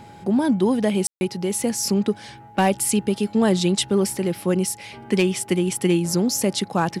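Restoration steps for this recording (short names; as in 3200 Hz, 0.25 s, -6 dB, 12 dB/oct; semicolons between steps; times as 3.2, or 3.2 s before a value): clip repair -9.5 dBFS; de-hum 110.3 Hz, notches 4; notch 830 Hz, Q 30; room tone fill 1.07–1.21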